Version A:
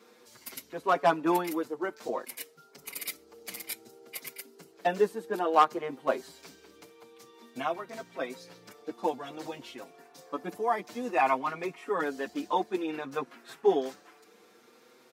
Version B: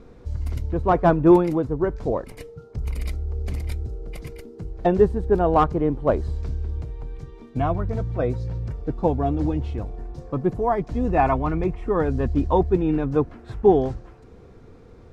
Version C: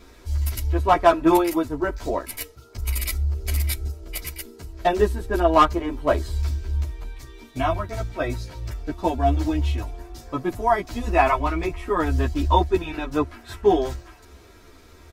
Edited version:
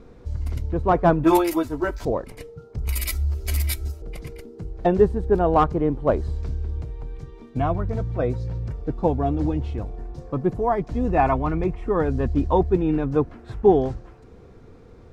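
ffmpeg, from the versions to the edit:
-filter_complex "[2:a]asplit=2[s0][s1];[1:a]asplit=3[s2][s3][s4];[s2]atrim=end=1.242[s5];[s0]atrim=start=1.238:end=2.052[s6];[s3]atrim=start=2.048:end=2.892[s7];[s1]atrim=start=2.888:end=4.022[s8];[s4]atrim=start=4.018[s9];[s5][s6]acrossfade=d=0.004:c1=hsin:c2=hsin[s10];[s10][s7]acrossfade=d=0.004:c1=hsin:c2=hsin[s11];[s11][s8]acrossfade=d=0.004:c1=hsin:c2=hsin[s12];[s12][s9]acrossfade=d=0.004:c1=hsin:c2=hsin"

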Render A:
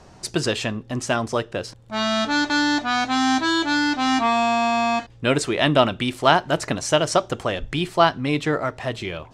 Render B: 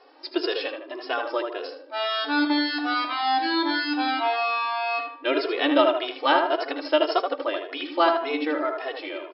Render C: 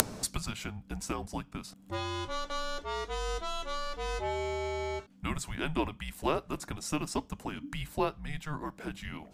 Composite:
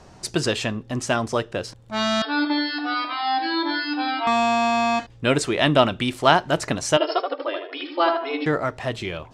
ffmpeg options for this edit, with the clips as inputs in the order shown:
-filter_complex "[1:a]asplit=2[s0][s1];[0:a]asplit=3[s2][s3][s4];[s2]atrim=end=2.222[s5];[s0]atrim=start=2.218:end=4.272[s6];[s3]atrim=start=4.268:end=6.972[s7];[s1]atrim=start=6.968:end=8.462[s8];[s4]atrim=start=8.458[s9];[s5][s6]acrossfade=d=0.004:c1=hsin:c2=hsin[s10];[s10][s7]acrossfade=d=0.004:c1=hsin:c2=hsin[s11];[s11][s8]acrossfade=d=0.004:c1=hsin:c2=hsin[s12];[s12][s9]acrossfade=d=0.004:c1=hsin:c2=hsin"

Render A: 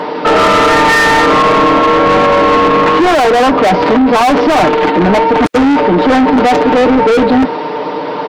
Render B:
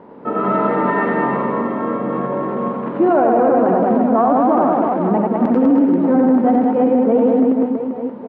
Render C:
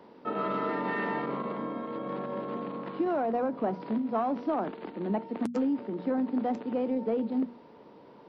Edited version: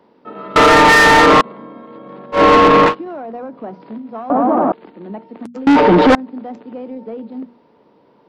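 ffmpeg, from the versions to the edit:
-filter_complex "[0:a]asplit=3[s0][s1][s2];[2:a]asplit=5[s3][s4][s5][s6][s7];[s3]atrim=end=0.562[s8];[s0]atrim=start=0.558:end=1.412[s9];[s4]atrim=start=1.408:end=2.42[s10];[s1]atrim=start=2.32:end=2.95[s11];[s5]atrim=start=2.85:end=4.302[s12];[1:a]atrim=start=4.298:end=4.722[s13];[s6]atrim=start=4.718:end=5.672[s14];[s2]atrim=start=5.668:end=6.152[s15];[s7]atrim=start=6.148[s16];[s8][s9]acrossfade=d=0.004:c1=hsin:c2=hsin[s17];[s17][s10]acrossfade=d=0.004:c1=hsin:c2=hsin[s18];[s18][s11]acrossfade=d=0.1:c1=tri:c2=tri[s19];[s19][s12]acrossfade=d=0.1:c1=tri:c2=tri[s20];[s20][s13]acrossfade=d=0.004:c1=hsin:c2=hsin[s21];[s21][s14]acrossfade=d=0.004:c1=hsin:c2=hsin[s22];[s22][s15]acrossfade=d=0.004:c1=hsin:c2=hsin[s23];[s23][s16]acrossfade=d=0.004:c1=hsin:c2=hsin"

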